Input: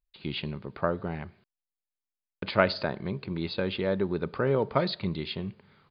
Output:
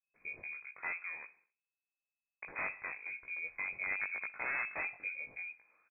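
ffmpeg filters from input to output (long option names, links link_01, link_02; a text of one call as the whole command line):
ffmpeg -i in.wav -filter_complex "[0:a]aeval=exprs='(mod(8.41*val(0)+1,2)-1)/8.41':channel_layout=same,flanger=delay=17:depth=4.3:speed=0.91,asplit=2[link_01][link_02];[link_02]aecho=0:1:64|128|192|256:0.0794|0.0429|0.0232|0.0125[link_03];[link_01][link_03]amix=inputs=2:normalize=0,lowpass=frequency=2200:width_type=q:width=0.5098,lowpass=frequency=2200:width_type=q:width=0.6013,lowpass=frequency=2200:width_type=q:width=0.9,lowpass=frequency=2200:width_type=q:width=2.563,afreqshift=-2600,volume=-7.5dB" out.wav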